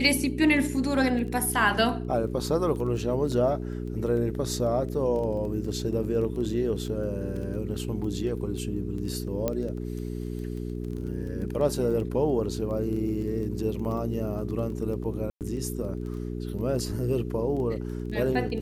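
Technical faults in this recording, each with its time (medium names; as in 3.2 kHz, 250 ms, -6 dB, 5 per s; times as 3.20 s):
crackle 11 per s -34 dBFS
hum 60 Hz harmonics 7 -33 dBFS
3.32 s: dropout 2.6 ms
9.48 s: pop -13 dBFS
15.30–15.41 s: dropout 108 ms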